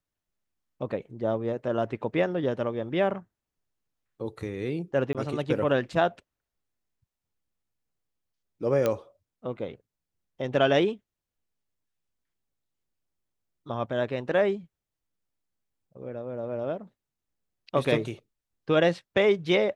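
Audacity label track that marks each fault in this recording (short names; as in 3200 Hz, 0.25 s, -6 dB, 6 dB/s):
5.130000	5.150000	gap 17 ms
8.860000	8.860000	pop -12 dBFS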